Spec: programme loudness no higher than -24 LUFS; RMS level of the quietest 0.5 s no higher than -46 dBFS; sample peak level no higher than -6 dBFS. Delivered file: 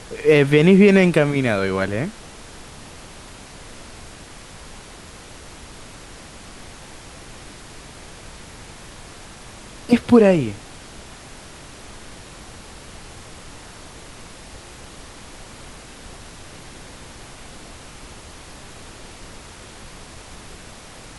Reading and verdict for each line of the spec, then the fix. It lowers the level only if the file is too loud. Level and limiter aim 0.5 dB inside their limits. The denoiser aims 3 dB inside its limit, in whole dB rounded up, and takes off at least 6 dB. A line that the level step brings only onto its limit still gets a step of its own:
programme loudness -16.0 LUFS: fail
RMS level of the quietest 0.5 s -40 dBFS: fail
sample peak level -2.5 dBFS: fail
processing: gain -8.5 dB

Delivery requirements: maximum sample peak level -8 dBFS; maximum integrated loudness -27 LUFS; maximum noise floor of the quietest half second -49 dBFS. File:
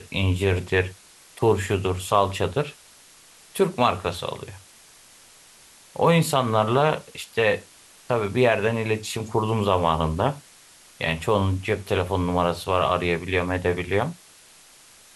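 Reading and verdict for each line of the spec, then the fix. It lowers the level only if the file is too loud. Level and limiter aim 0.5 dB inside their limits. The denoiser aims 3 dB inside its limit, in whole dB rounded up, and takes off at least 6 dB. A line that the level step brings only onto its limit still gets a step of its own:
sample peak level -6.0 dBFS: fail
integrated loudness -23.5 LUFS: fail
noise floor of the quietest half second -51 dBFS: OK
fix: gain -4 dB

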